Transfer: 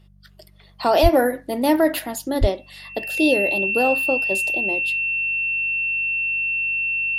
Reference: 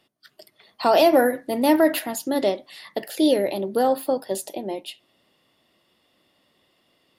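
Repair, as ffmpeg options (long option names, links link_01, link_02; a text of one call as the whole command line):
ffmpeg -i in.wav -filter_complex "[0:a]bandreject=frequency=48.6:width_type=h:width=4,bandreject=frequency=97.2:width_type=h:width=4,bandreject=frequency=145.8:width_type=h:width=4,bandreject=frequency=194.4:width_type=h:width=4,bandreject=frequency=2700:width=30,asplit=3[link_01][link_02][link_03];[link_01]afade=type=out:start_time=1.02:duration=0.02[link_04];[link_02]highpass=frequency=140:width=0.5412,highpass=frequency=140:width=1.3066,afade=type=in:start_time=1.02:duration=0.02,afade=type=out:start_time=1.14:duration=0.02[link_05];[link_03]afade=type=in:start_time=1.14:duration=0.02[link_06];[link_04][link_05][link_06]amix=inputs=3:normalize=0,asplit=3[link_07][link_08][link_09];[link_07]afade=type=out:start_time=2.4:duration=0.02[link_10];[link_08]highpass=frequency=140:width=0.5412,highpass=frequency=140:width=1.3066,afade=type=in:start_time=2.4:duration=0.02,afade=type=out:start_time=2.52:duration=0.02[link_11];[link_09]afade=type=in:start_time=2.52:duration=0.02[link_12];[link_10][link_11][link_12]amix=inputs=3:normalize=0" out.wav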